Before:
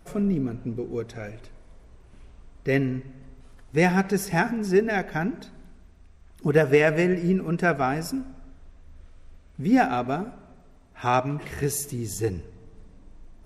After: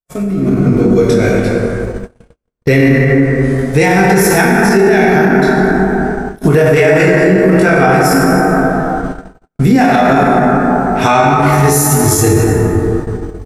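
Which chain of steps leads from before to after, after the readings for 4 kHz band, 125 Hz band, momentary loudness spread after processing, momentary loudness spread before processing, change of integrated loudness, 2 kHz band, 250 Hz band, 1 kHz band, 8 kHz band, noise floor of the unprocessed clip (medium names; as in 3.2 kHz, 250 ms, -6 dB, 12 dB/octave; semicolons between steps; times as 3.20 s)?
+16.0 dB, +17.0 dB, 8 LU, 13 LU, +14.5 dB, +16.0 dB, +16.0 dB, +16.5 dB, +18.5 dB, -52 dBFS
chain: treble shelf 4.5 kHz +7 dB; doubling 21 ms -3 dB; on a send: tape echo 196 ms, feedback 64%, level -16.5 dB, low-pass 1.7 kHz; on the sum: plate-style reverb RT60 3.1 s, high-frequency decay 0.35×, DRR -3.5 dB; in parallel at 0 dB: compression, threshold -29 dBFS, peak gain reduction 19.5 dB; on the sum: word length cut 12-bit, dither none; peak limiter -14 dBFS, peak gain reduction 13.5 dB; gate -29 dBFS, range -56 dB; level rider gain up to 11.5 dB; trim +2.5 dB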